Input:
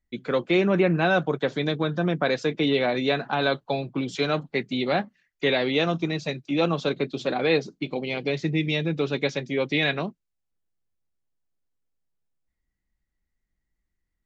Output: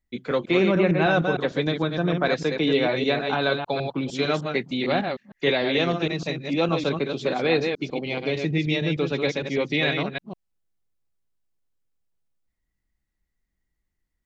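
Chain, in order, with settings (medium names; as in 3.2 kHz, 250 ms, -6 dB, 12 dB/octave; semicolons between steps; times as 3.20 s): chunks repeated in reverse 152 ms, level -5 dB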